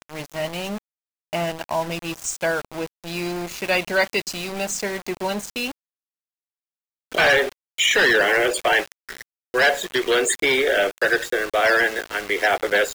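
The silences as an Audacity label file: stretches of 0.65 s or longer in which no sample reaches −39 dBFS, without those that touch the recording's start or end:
5.720000	7.120000	silence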